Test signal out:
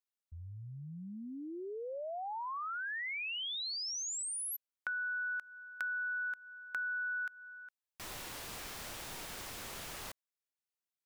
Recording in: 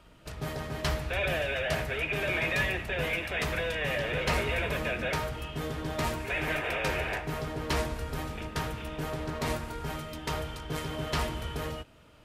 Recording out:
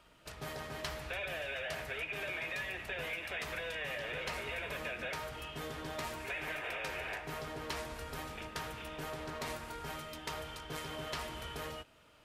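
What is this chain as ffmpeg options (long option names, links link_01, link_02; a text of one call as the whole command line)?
ffmpeg -i in.wav -af "lowshelf=frequency=390:gain=-9.5,acompressor=threshold=-34dB:ratio=6,volume=-2.5dB" out.wav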